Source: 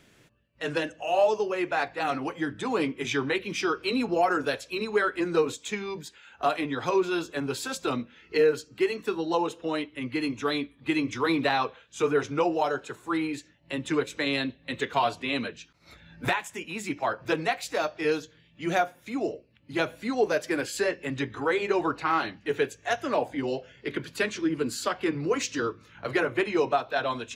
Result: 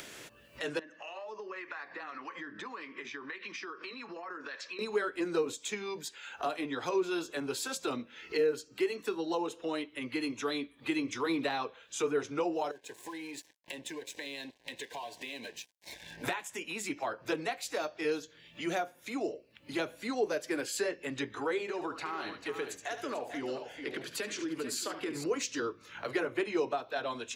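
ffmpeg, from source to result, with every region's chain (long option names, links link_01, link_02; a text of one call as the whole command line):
ffmpeg -i in.wav -filter_complex "[0:a]asettb=1/sr,asplit=3[link_01][link_02][link_03];[link_01]atrim=end=0.794[link_04];[link_02]atrim=start=0.79:end=4.79,asetpts=PTS-STARTPTS,afade=type=in:duration=0.004:curve=qsin,afade=type=out:start_time=3.996:duration=0.004:curve=qsin,acompressor=threshold=-38dB:ratio=12:attack=3.2:release=140:knee=1:detection=peak,acrossover=split=810[link_05][link_06];[link_05]aeval=exprs='val(0)*(1-0.5/2+0.5/2*cos(2*PI*1.7*n/s))':channel_layout=same[link_07];[link_06]aeval=exprs='val(0)*(1-0.5/2-0.5/2*cos(2*PI*1.7*n/s))':channel_layout=same[link_08];[link_07][link_08]amix=inputs=2:normalize=0,highpass=190,equalizer=frequency=200:width_type=q:width=4:gain=4,equalizer=frequency=480:width_type=q:width=4:gain=-4,equalizer=frequency=730:width_type=q:width=4:gain=-8,equalizer=frequency=1100:width_type=q:width=4:gain=9,equalizer=frequency=1800:width_type=q:width=4:gain=9,equalizer=frequency=3300:width_type=q:width=4:gain=-5,lowpass=frequency=5400:width=0.5412,lowpass=frequency=5400:width=1.3066[link_09];[link_03]atrim=start=4.786[link_10];[link_04][link_09]acrossfade=duration=0.004:curve1=hsin:curve2=qsin[link_11];[link_11][link_10]acrossfade=duration=0.004:curve1=qsin:curve2=hsin,asettb=1/sr,asplit=3[link_12][link_13][link_14];[link_12]atrim=end=12.714[link_15];[link_13]atrim=start=12.71:end=16.24,asetpts=PTS-STARTPTS,afade=type=in:duration=0.004:curve=qsin,afade=type=out:start_time=3.526:duration=0.004:curve=qsin,acompressor=threshold=-43dB:ratio=2.5:attack=3.2:release=140:knee=1:detection=peak,aeval=exprs='sgn(val(0))*max(abs(val(0))-0.0015,0)':channel_layout=same,asuperstop=centerf=1300:order=12:qfactor=2.9[link_16];[link_14]atrim=start=16.236[link_17];[link_15][link_16]acrossfade=duration=0.004:curve1=hsin:curve2=qsin[link_18];[link_18][link_17]acrossfade=duration=0.004:curve1=qsin:curve2=hsin,asettb=1/sr,asplit=3[link_19][link_20][link_21];[link_19]atrim=end=21.614[link_22];[link_20]atrim=start=21.61:end=25.24,asetpts=PTS-STARTPTS,afade=type=in:duration=0.004:curve=qsin,afade=type=out:start_time=3.626:duration=0.004:curve=qsin,acompressor=threshold=-29dB:ratio=3:attack=3.2:release=140:knee=1:detection=peak,aecho=1:1:72|442:0.266|0.282,atrim=end_sample=160083[link_23];[link_21]atrim=start=25.236[link_24];[link_22][link_23]acrossfade=duration=0.004:curve1=hsin:curve2=qsin[link_25];[link_25][link_24]acrossfade=duration=0.004:curve1=qsin:curve2=hsin,acrossover=split=380[link_26][link_27];[link_27]acompressor=threshold=-40dB:ratio=2[link_28];[link_26][link_28]amix=inputs=2:normalize=0,bass=frequency=250:gain=-13,treble=frequency=4000:gain=4,acompressor=mode=upward:threshold=-37dB:ratio=2.5" out.wav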